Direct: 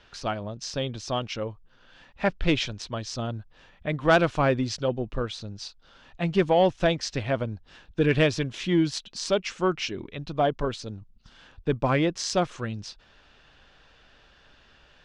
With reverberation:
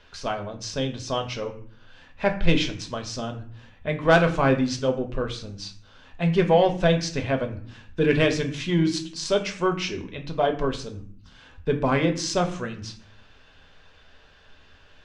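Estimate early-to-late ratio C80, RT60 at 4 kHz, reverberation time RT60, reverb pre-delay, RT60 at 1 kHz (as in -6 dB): 14.5 dB, 0.35 s, 0.55 s, 4 ms, 0.50 s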